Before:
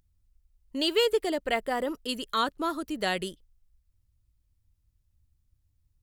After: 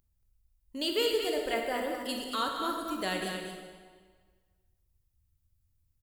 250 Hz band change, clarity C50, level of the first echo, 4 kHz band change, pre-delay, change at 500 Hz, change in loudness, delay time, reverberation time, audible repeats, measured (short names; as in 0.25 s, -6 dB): -3.5 dB, 1.5 dB, -7.0 dB, -2.5 dB, 19 ms, -3.0 dB, -3.0 dB, 0.229 s, 1.6 s, 1